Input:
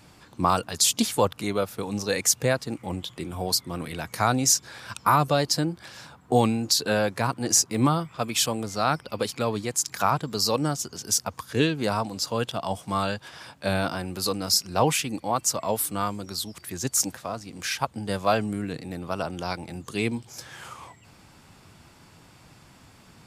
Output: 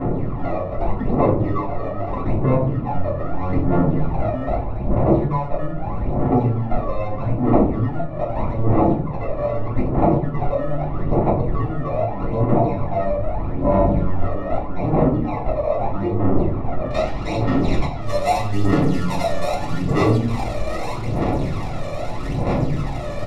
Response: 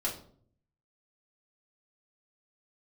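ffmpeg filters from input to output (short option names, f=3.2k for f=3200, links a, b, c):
-filter_complex "[0:a]aeval=exprs='val(0)+0.5*0.0376*sgn(val(0))':c=same,aecho=1:1:7.2:0.89,acrusher=samples=28:mix=1:aa=0.000001,alimiter=limit=-10.5dB:level=0:latency=1:release=466,asoftclip=type=tanh:threshold=-13dB,acompressor=threshold=-23dB:ratio=6,aecho=1:1:87:0.251,adynamicsmooth=sensitivity=6:basefreq=610,aphaser=in_gain=1:out_gain=1:delay=1.7:decay=0.7:speed=0.8:type=sinusoidal,asetnsamples=n=441:p=0,asendcmd='16.9 lowpass f 5100;18.01 lowpass f 12000',lowpass=1.2k[a];[1:a]atrim=start_sample=2205[b];[a][b]afir=irnorm=-1:irlink=0,volume=-3dB"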